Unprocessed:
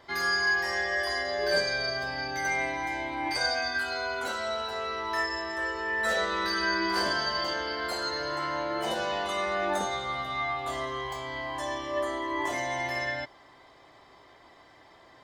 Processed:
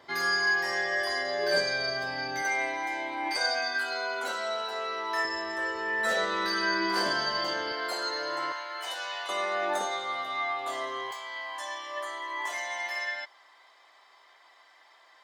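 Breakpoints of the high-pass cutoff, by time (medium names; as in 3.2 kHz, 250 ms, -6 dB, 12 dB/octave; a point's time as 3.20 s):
130 Hz
from 2.42 s 320 Hz
from 5.25 s 130 Hz
from 7.72 s 350 Hz
from 8.52 s 1.2 kHz
from 9.29 s 380 Hz
from 11.11 s 960 Hz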